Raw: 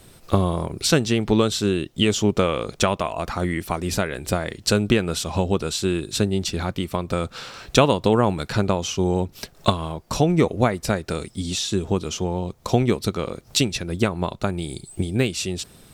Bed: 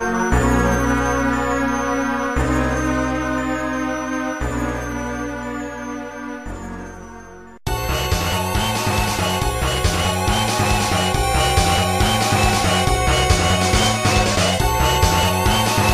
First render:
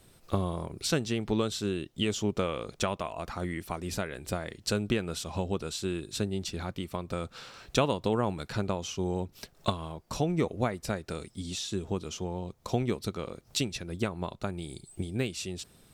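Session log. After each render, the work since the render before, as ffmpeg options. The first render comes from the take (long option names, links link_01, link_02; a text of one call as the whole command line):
ffmpeg -i in.wav -af "volume=-10dB" out.wav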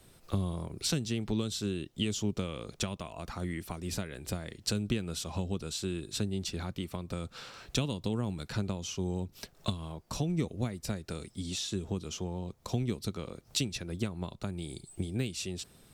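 ffmpeg -i in.wav -filter_complex "[0:a]acrossover=split=290|3000[link_01][link_02][link_03];[link_02]acompressor=threshold=-40dB:ratio=6[link_04];[link_01][link_04][link_03]amix=inputs=3:normalize=0" out.wav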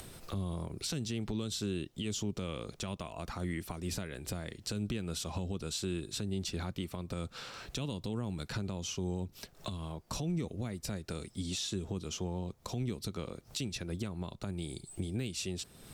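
ffmpeg -i in.wav -af "acompressor=mode=upward:threshold=-40dB:ratio=2.5,alimiter=level_in=2.5dB:limit=-24dB:level=0:latency=1:release=59,volume=-2.5dB" out.wav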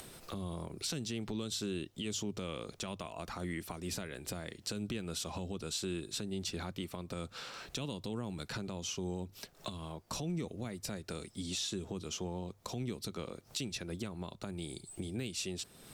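ffmpeg -i in.wav -af "lowshelf=frequency=140:gain=-8,bandreject=frequency=50:width_type=h:width=6,bandreject=frequency=100:width_type=h:width=6" out.wav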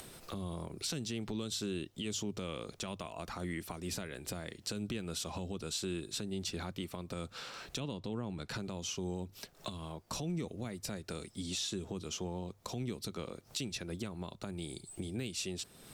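ffmpeg -i in.wav -filter_complex "[0:a]asettb=1/sr,asplit=3[link_01][link_02][link_03];[link_01]atrim=end=7.804[link_04];[link_02]atrim=start=7.8:end=8.49,asetpts=PTS-STARTPTS,afade=type=in:duration=0.004:curve=qsin,afade=type=out:start_time=0.686:duration=0.004:curve=qsin,aemphasis=mode=reproduction:type=50fm[link_05];[link_03]atrim=start=8.486[link_06];[link_04][link_05]acrossfade=duration=0.004:curve1=hsin:curve2=qsin[link_07];[link_07][link_06]acrossfade=duration=0.004:curve1=qsin:curve2=hsin" out.wav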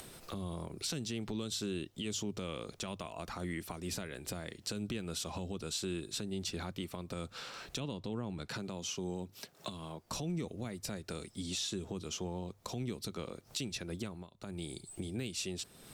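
ffmpeg -i in.wav -filter_complex "[0:a]asettb=1/sr,asplit=3[link_01][link_02][link_03];[link_01]atrim=end=8.494[link_04];[link_02]atrim=start=8.49:end=10.04,asetpts=PTS-STARTPTS,afade=type=in:duration=0.004:curve=qsin,afade=type=out:start_time=1.546:duration=0.004:curve=qsin,highpass=110[link_05];[link_03]atrim=start=10.036[link_06];[link_04][link_05]acrossfade=duration=0.004:curve1=hsin:curve2=qsin[link_07];[link_07][link_06]acrossfade=duration=0.004:curve1=qsin:curve2=hsin,asplit=3[link_08][link_09][link_10];[link_08]atrim=end=14.29,asetpts=PTS-STARTPTS,afade=type=out:start_time=14.02:duration=0.27:curve=qsin:silence=0.177828[link_11];[link_09]atrim=start=14.29:end=14.34,asetpts=PTS-STARTPTS,volume=-15dB[link_12];[link_10]atrim=start=14.34,asetpts=PTS-STARTPTS,afade=type=in:duration=0.27:curve=qsin:silence=0.177828[link_13];[link_11][link_12][link_13]concat=n=3:v=0:a=1" out.wav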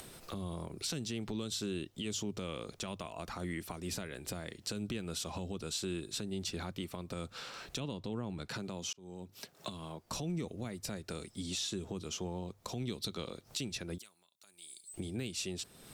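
ffmpeg -i in.wav -filter_complex "[0:a]asettb=1/sr,asplit=3[link_01][link_02][link_03];[link_01]atrim=end=12.824[link_04];[link_02]atrim=start=12.82:end=13.43,asetpts=PTS-STARTPTS,afade=type=in:duration=0.004:curve=qsin,afade=type=out:start_time=0.606:duration=0.004:curve=qsin,equalizer=frequency=3700:width_type=o:width=0.53:gain=9[link_05];[link_03]atrim=start=13.426[link_06];[link_04][link_05]acrossfade=duration=0.004:curve1=hsin:curve2=qsin[link_07];[link_07][link_06]acrossfade=duration=0.004:curve1=qsin:curve2=hsin,asettb=1/sr,asplit=3[link_08][link_09][link_10];[link_08]atrim=end=13.984[link_11];[link_09]atrim=start=13.98:end=14.94,asetpts=PTS-STARTPTS,afade=type=in:duration=0.004:curve=qsin,afade=type=out:start_time=0.956:duration=0.004:curve=qsin,aderivative[link_12];[link_10]atrim=start=14.936[link_13];[link_11][link_12]acrossfade=duration=0.004:curve1=hsin:curve2=qsin[link_14];[link_14][link_13]acrossfade=duration=0.004:curve1=qsin:curve2=hsin,asplit=2[link_15][link_16];[link_15]atrim=end=8.93,asetpts=PTS-STARTPTS,afade=type=out:start_time=8.926:duration=0.004:curve=hsin[link_17];[link_16]atrim=start=8.93,asetpts=PTS-STARTPTS,afade=type=in:duration=0.5[link_18];[link_17][link_18]concat=n=2:v=0:a=1" out.wav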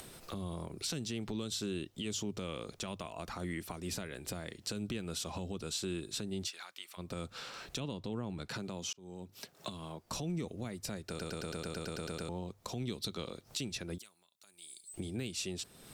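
ffmpeg -i in.wav -filter_complex "[0:a]asplit=3[link_01][link_02][link_03];[link_01]afade=type=out:start_time=6.46:duration=0.02[link_04];[link_02]highpass=1300,afade=type=in:start_time=6.46:duration=0.02,afade=type=out:start_time=6.97:duration=0.02[link_05];[link_03]afade=type=in:start_time=6.97:duration=0.02[link_06];[link_04][link_05][link_06]amix=inputs=3:normalize=0,asplit=12[link_07][link_08][link_09][link_10][link_11][link_12][link_13][link_14][link_15][link_16][link_17][link_18];[link_07]atrim=end=11.192[link_19];[link_08]atrim=start=11.078:end=11.192[link_20];[link_09]atrim=start=11.078:end=11.192[link_21];[link_10]atrim=start=11.078:end=11.192[link_22];[link_11]atrim=start=11.078:end=11.192[link_23];[link_12]atrim=start=11.078:end=11.192[link_24];[link_13]atrim=start=11.078:end=11.192[link_25];[link_14]atrim=start=11.078:end=11.192[link_26];[link_15]atrim=start=11.078:end=11.192[link_27];[link_16]atrim=start=11.078:end=11.192[link_28];[link_17]atrim=start=11.078:end=11.192[link_29];[link_18]atrim=start=12.288[link_30];[link_19][link_20]acrossfade=duration=0.004:curve1=hsin:curve2=hsin[link_31];[link_31][link_21]acrossfade=duration=0.004:curve1=hsin:curve2=hsin[link_32];[link_32][link_22]acrossfade=duration=0.004:curve1=hsin:curve2=hsin[link_33];[link_33][link_23]acrossfade=duration=0.004:curve1=hsin:curve2=hsin[link_34];[link_34][link_24]acrossfade=duration=0.004:curve1=hsin:curve2=hsin[link_35];[link_35][link_25]acrossfade=duration=0.004:curve1=hsin:curve2=hsin[link_36];[link_36][link_26]acrossfade=duration=0.004:curve1=hsin:curve2=hsin[link_37];[link_37][link_27]acrossfade=duration=0.004:curve1=hsin:curve2=hsin[link_38];[link_38][link_28]acrossfade=duration=0.004:curve1=hsin:curve2=hsin[link_39];[link_39][link_29]acrossfade=duration=0.004:curve1=hsin:curve2=hsin[link_40];[link_40][link_30]acrossfade=duration=0.004:curve1=hsin:curve2=hsin" out.wav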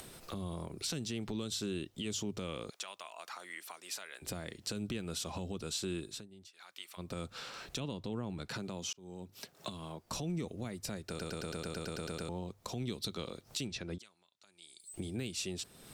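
ffmpeg -i in.wav -filter_complex "[0:a]asettb=1/sr,asplit=3[link_01][link_02][link_03];[link_01]atrim=end=2.704[link_04];[link_02]atrim=start=2.7:end=4.22,asetpts=PTS-STARTPTS,afade=type=in:duration=0.004:curve=qsin,afade=type=out:start_time=1.516:duration=0.004:curve=qsin,highpass=880[link_05];[link_03]atrim=start=4.216[link_06];[link_04][link_05]acrossfade=duration=0.004:curve1=hsin:curve2=qsin[link_07];[link_07][link_06]acrossfade=duration=0.004:curve1=qsin:curve2=hsin,asettb=1/sr,asplit=3[link_08][link_09][link_10];[link_08]atrim=end=13.674[link_11];[link_09]atrim=start=13.67:end=14.8,asetpts=PTS-STARTPTS,afade=type=in:duration=0.004:curve=qsin,afade=type=out:start_time=1.126:duration=0.004:curve=qsin,lowpass=5700[link_12];[link_10]atrim=start=14.796[link_13];[link_11][link_12]acrossfade=duration=0.004:curve1=hsin:curve2=qsin[link_14];[link_14][link_13]acrossfade=duration=0.004:curve1=qsin:curve2=hsin,asplit=3[link_15][link_16][link_17];[link_15]atrim=end=6.28,asetpts=PTS-STARTPTS,afade=type=out:start_time=6.01:duration=0.27:silence=0.133352[link_18];[link_16]atrim=start=6.28:end=6.53,asetpts=PTS-STARTPTS,volume=-17.5dB[link_19];[link_17]atrim=start=6.53,asetpts=PTS-STARTPTS,afade=type=in:duration=0.27:silence=0.133352[link_20];[link_18][link_19][link_20]concat=n=3:v=0:a=1" out.wav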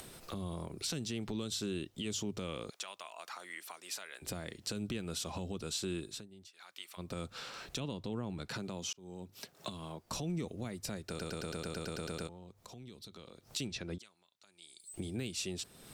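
ffmpeg -i in.wav -filter_complex "[0:a]asettb=1/sr,asplit=3[link_01][link_02][link_03];[link_01]atrim=end=12.274[link_04];[link_02]atrim=start=12.27:end=13.43,asetpts=PTS-STARTPTS,afade=type=in:duration=0.004:curve=qsin,afade=type=out:start_time=1.156:duration=0.004:curve=qsin,acompressor=threshold=-53dB:ratio=2.5:attack=3.2:release=140:knee=1:detection=peak[link_05];[link_03]atrim=start=13.426[link_06];[link_04][link_05]acrossfade=duration=0.004:curve1=hsin:curve2=qsin[link_07];[link_07][link_06]acrossfade=duration=0.004:curve1=qsin:curve2=hsin" out.wav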